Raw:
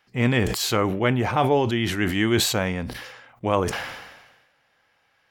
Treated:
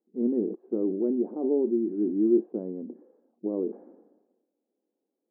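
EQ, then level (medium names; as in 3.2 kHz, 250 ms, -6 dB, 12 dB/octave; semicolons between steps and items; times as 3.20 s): brick-wall FIR high-pass 190 Hz; four-pole ladder low-pass 410 Hz, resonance 55%; distance through air 250 m; +3.5 dB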